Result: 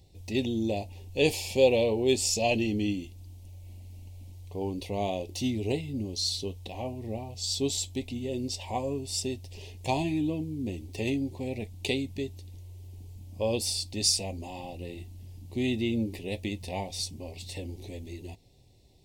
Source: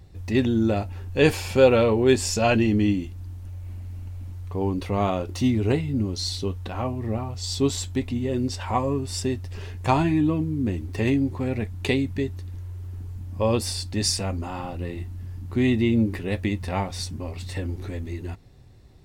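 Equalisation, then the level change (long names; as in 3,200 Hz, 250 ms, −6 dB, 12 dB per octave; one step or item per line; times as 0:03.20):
Butterworth band-reject 1,400 Hz, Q 0.76
low-shelf EQ 460 Hz −10.5 dB
0.0 dB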